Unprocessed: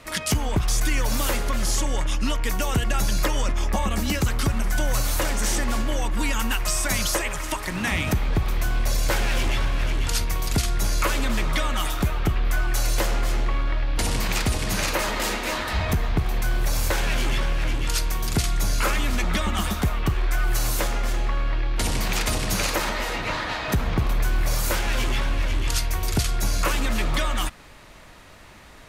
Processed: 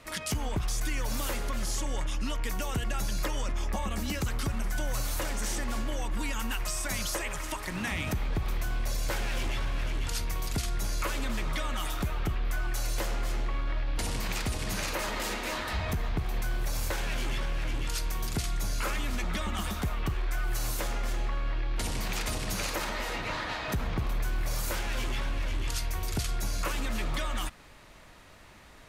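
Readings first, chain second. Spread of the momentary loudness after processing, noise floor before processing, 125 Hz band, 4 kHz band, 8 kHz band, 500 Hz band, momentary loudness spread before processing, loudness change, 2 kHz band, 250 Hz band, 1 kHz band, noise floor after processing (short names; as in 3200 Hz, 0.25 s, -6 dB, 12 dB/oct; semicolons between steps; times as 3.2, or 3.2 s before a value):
2 LU, -41 dBFS, -8.0 dB, -8.0 dB, -8.5 dB, -8.0 dB, 3 LU, -8.0 dB, -8.0 dB, -8.0 dB, -8.0 dB, -47 dBFS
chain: limiter -17 dBFS, peak gain reduction 3.5 dB; gain -6 dB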